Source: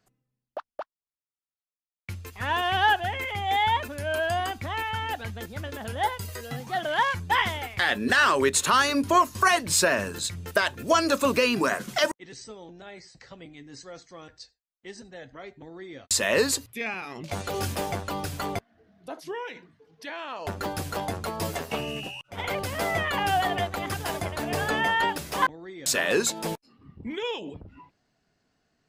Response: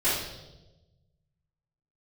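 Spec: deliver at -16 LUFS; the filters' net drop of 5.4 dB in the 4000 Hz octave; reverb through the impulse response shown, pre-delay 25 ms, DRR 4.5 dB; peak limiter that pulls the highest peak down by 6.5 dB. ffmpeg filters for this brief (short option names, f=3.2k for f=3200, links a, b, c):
-filter_complex "[0:a]equalizer=f=4k:t=o:g=-7.5,alimiter=limit=-17dB:level=0:latency=1,asplit=2[a][b];[1:a]atrim=start_sample=2205,adelay=25[c];[b][c]afir=irnorm=-1:irlink=0,volume=-17dB[d];[a][d]amix=inputs=2:normalize=0,volume=11.5dB"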